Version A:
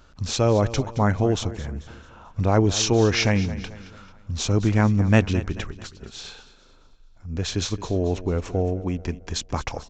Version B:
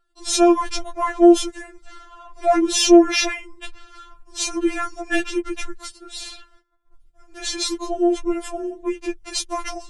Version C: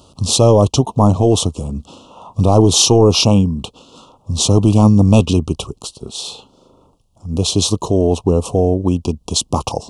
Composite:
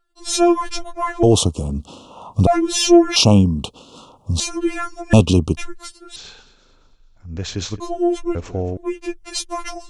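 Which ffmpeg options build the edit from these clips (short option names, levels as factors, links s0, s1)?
-filter_complex "[2:a]asplit=3[s0][s1][s2];[0:a]asplit=2[s3][s4];[1:a]asplit=6[s5][s6][s7][s8][s9][s10];[s5]atrim=end=1.232[s11];[s0]atrim=start=1.228:end=2.472[s12];[s6]atrim=start=2.468:end=3.162[s13];[s1]atrim=start=3.158:end=4.402[s14];[s7]atrim=start=4.398:end=5.132[s15];[s2]atrim=start=5.128:end=5.572[s16];[s8]atrim=start=5.568:end=6.162[s17];[s3]atrim=start=6.158:end=7.802[s18];[s9]atrim=start=7.798:end=8.352[s19];[s4]atrim=start=8.348:end=8.772[s20];[s10]atrim=start=8.768[s21];[s11][s12]acrossfade=d=0.004:c1=hsin:c2=hsin[s22];[s22][s13]acrossfade=d=0.004:c1=hsin:c2=hsin[s23];[s23][s14]acrossfade=d=0.004:c1=hsin:c2=hsin[s24];[s24][s15]acrossfade=d=0.004:c1=hsin:c2=hsin[s25];[s25][s16]acrossfade=d=0.004:c1=hsin:c2=hsin[s26];[s26][s17]acrossfade=d=0.004:c1=hsin:c2=hsin[s27];[s27][s18]acrossfade=d=0.004:c1=hsin:c2=hsin[s28];[s28][s19]acrossfade=d=0.004:c1=hsin:c2=hsin[s29];[s29][s20]acrossfade=d=0.004:c1=hsin:c2=hsin[s30];[s30][s21]acrossfade=d=0.004:c1=hsin:c2=hsin"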